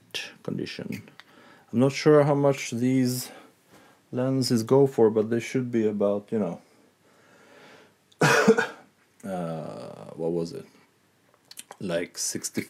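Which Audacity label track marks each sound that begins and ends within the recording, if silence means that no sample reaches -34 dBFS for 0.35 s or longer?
1.730000	3.320000	sound
4.130000	6.550000	sound
8.210000	8.720000	sound
9.200000	10.610000	sound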